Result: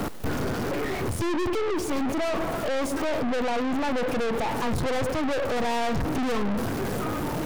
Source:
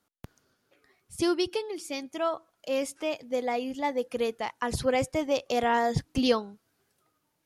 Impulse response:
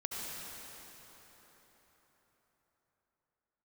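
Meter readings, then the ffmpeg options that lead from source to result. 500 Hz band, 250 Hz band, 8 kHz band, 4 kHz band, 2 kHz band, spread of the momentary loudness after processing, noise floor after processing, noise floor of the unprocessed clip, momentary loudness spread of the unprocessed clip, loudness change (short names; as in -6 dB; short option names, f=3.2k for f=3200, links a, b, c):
+2.0 dB, +5.0 dB, +3.0 dB, +0.5 dB, +4.5 dB, 3 LU, -30 dBFS, -76 dBFS, 9 LU, +2.0 dB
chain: -filter_complex "[0:a]aeval=exprs='val(0)+0.5*0.0422*sgn(val(0))':c=same,tiltshelf=f=1.2k:g=9.5,asplit=2[a][b];[1:a]atrim=start_sample=2205,asetrate=57330,aresample=44100,lowpass=6.7k[c];[b][c]afir=irnorm=-1:irlink=0,volume=-13.5dB[d];[a][d]amix=inputs=2:normalize=0,aeval=exprs='(tanh(39.8*val(0)+0.6)-tanh(0.6))/39.8':c=same,volume=6.5dB"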